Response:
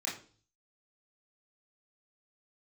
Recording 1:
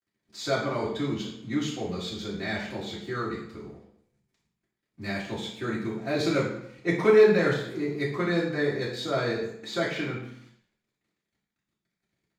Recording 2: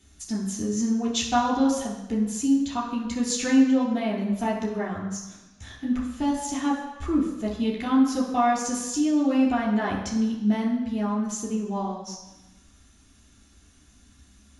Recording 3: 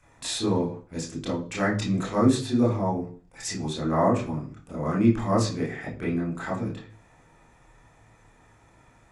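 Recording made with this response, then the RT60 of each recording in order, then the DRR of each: 3; 0.70, 1.0, 0.40 s; -7.0, -4.0, -6.5 dB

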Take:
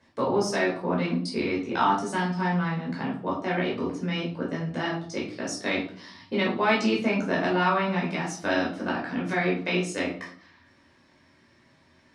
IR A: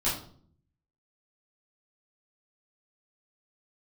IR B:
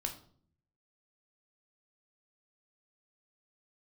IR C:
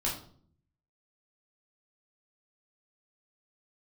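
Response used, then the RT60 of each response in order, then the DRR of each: C; 0.55, 0.55, 0.55 s; -10.0, 4.0, -4.5 dB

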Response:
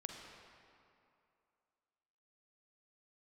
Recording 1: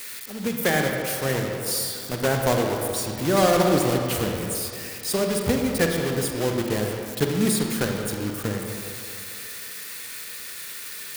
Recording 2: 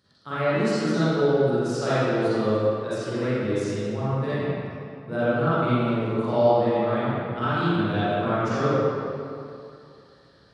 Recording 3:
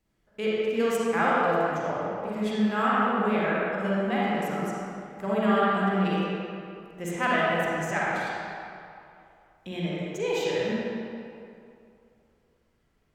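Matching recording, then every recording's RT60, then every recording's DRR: 1; 2.6, 2.6, 2.6 s; 1.5, -13.5, -7.5 dB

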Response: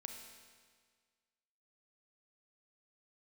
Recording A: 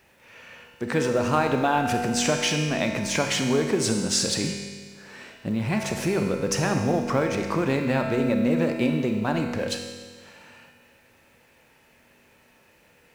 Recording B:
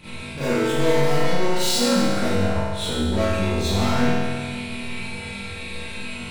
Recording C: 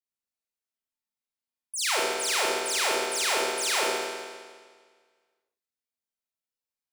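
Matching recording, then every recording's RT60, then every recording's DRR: A; 1.7, 1.7, 1.7 s; 3.5, -16.5, -6.5 dB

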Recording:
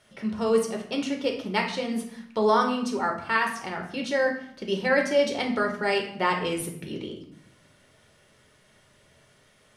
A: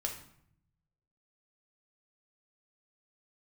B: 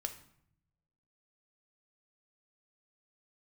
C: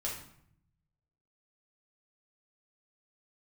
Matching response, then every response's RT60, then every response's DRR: A; 0.65, 0.70, 0.65 s; 2.0, 7.0, -4.0 dB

